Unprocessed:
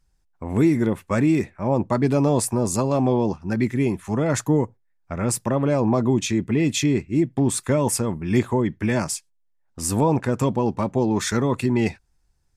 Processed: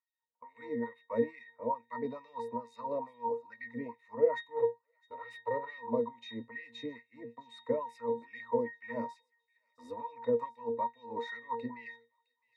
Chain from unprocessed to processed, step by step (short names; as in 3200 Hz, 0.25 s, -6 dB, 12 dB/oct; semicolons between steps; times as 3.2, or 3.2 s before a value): 4.56–5.78 minimum comb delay 2.2 ms; bell 8200 Hz -7.5 dB 0.94 oct; octave resonator A#, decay 0.23 s; LFO high-pass sine 2.3 Hz 450–2500 Hz; on a send: thin delay 0.661 s, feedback 46%, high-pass 3200 Hz, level -19.5 dB; on the sum: gain +4.5 dB